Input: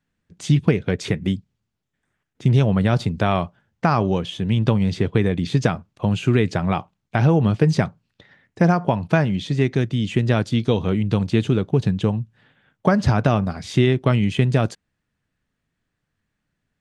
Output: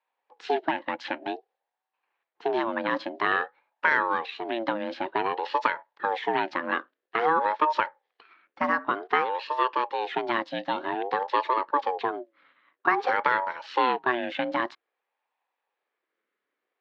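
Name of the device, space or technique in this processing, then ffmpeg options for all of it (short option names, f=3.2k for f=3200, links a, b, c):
voice changer toy: -af "aeval=exprs='val(0)*sin(2*PI*590*n/s+590*0.3/0.52*sin(2*PI*0.52*n/s))':c=same,highpass=410,equalizer=f=630:t=q:w=4:g=-10,equalizer=f=1.1k:t=q:w=4:g=3,equalizer=f=1.7k:t=q:w=4:g=9,lowpass=f=4.1k:w=0.5412,lowpass=f=4.1k:w=1.3066,volume=-2.5dB"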